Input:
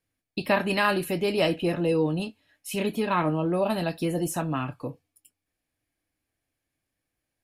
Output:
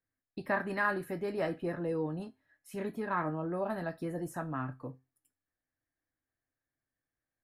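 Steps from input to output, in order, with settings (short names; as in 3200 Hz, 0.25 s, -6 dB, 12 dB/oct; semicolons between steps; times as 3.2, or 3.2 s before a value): resonant high shelf 2200 Hz -7.5 dB, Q 3; resonator 130 Hz, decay 0.27 s, harmonics all, mix 50%; gain -5 dB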